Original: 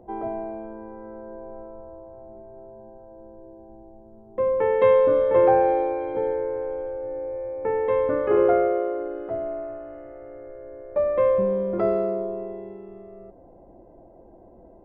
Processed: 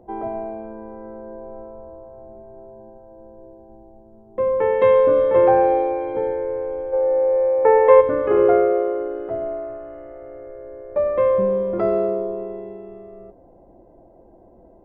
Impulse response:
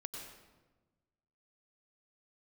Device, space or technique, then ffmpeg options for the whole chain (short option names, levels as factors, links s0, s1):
keyed gated reverb: -filter_complex "[0:a]asplit=3[s0][s1][s2];[1:a]atrim=start_sample=2205[s3];[s1][s3]afir=irnorm=-1:irlink=0[s4];[s2]apad=whole_len=654477[s5];[s4][s5]sidechaingate=range=0.0224:threshold=0.00631:ratio=16:detection=peak,volume=0.501[s6];[s0][s6]amix=inputs=2:normalize=0,asplit=3[s7][s8][s9];[s7]afade=t=out:st=6.92:d=0.02[s10];[s8]equalizer=f=125:t=o:w=1:g=-6,equalizer=f=250:t=o:w=1:g=-4,equalizer=f=500:t=o:w=1:g=9,equalizer=f=1000:t=o:w=1:g=9,equalizer=f=2000:t=o:w=1:g=6,afade=t=in:st=6.92:d=0.02,afade=t=out:st=8:d=0.02[s11];[s9]afade=t=in:st=8:d=0.02[s12];[s10][s11][s12]amix=inputs=3:normalize=0"